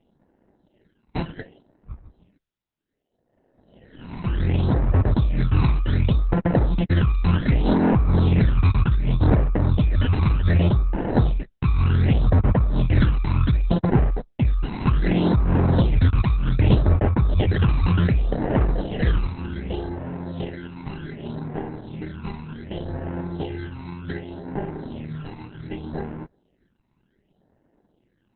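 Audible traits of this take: aliases and images of a low sample rate 1.2 kHz, jitter 0%; phasing stages 12, 0.66 Hz, lowest notch 540–3600 Hz; Opus

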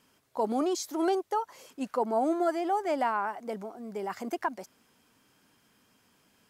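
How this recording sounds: noise floor -68 dBFS; spectral tilt -3.0 dB/octave

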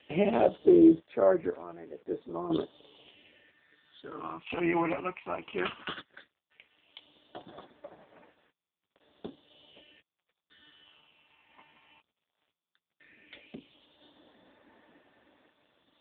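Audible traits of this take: phasing stages 8, 0.15 Hz, lowest notch 470–3100 Hz; random-step tremolo 2 Hz, depth 90%; a quantiser's noise floor 10-bit, dither none; AMR-NB

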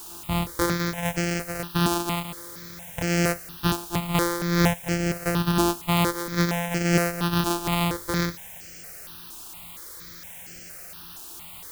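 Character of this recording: a buzz of ramps at a fixed pitch in blocks of 256 samples; tremolo triangle 2.2 Hz, depth 50%; a quantiser's noise floor 8-bit, dither triangular; notches that jump at a steady rate 4.3 Hz 550–3700 Hz

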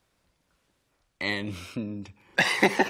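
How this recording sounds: noise floor -74 dBFS; spectral tilt -4.0 dB/octave

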